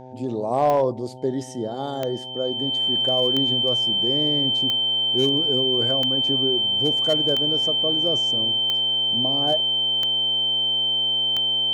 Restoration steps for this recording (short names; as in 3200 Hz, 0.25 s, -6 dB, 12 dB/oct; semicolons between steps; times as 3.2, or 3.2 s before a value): clip repair -12.5 dBFS; de-click; de-hum 128.2 Hz, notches 7; notch 3100 Hz, Q 30